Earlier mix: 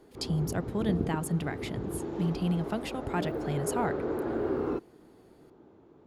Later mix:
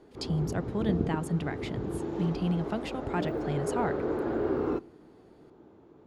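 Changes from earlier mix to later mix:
speech: add distance through air 54 m; reverb: on, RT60 0.45 s

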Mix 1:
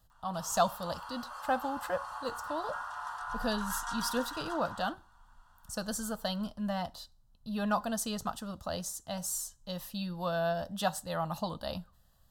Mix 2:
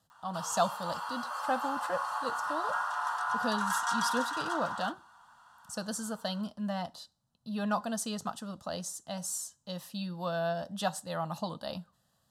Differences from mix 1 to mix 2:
speech: add Chebyshev band-pass 160–9700 Hz, order 2; background +7.0 dB

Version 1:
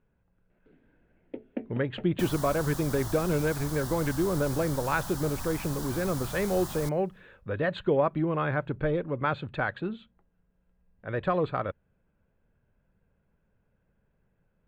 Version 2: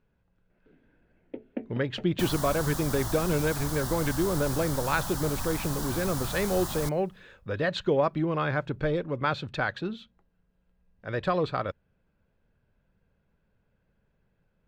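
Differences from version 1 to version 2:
speech: remove boxcar filter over 8 samples; second sound +4.0 dB

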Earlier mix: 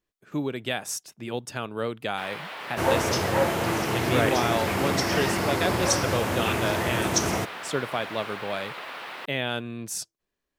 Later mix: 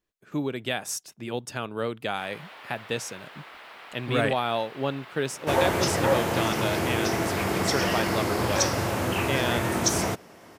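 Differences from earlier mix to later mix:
first sound -8.0 dB; second sound: entry +2.70 s

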